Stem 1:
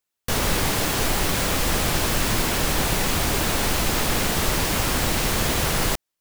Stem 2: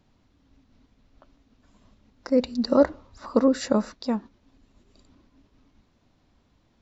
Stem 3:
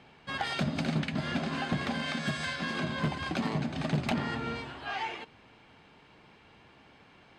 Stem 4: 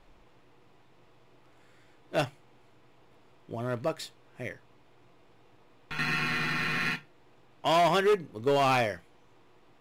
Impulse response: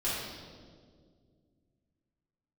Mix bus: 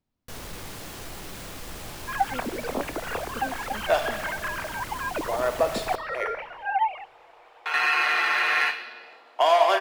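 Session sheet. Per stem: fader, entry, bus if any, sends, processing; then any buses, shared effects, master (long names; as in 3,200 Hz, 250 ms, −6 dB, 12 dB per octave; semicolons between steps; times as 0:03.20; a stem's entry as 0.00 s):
−16.0 dB, 0.00 s, no bus, send −18 dB, soft clipping −16 dBFS, distortion −18 dB
−18.5 dB, 0.00 s, no bus, no send, no processing
−5.5 dB, 1.80 s, bus A, no send, three sine waves on the formant tracks
+1.5 dB, 1.75 s, bus A, send −9 dB, high-pass filter 520 Hz 24 dB per octave
bus A: 0.0 dB, parametric band 690 Hz +10 dB 3 octaves; downward compressor, threshold −19 dBFS, peak gain reduction 9 dB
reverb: on, RT60 2.0 s, pre-delay 3 ms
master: no processing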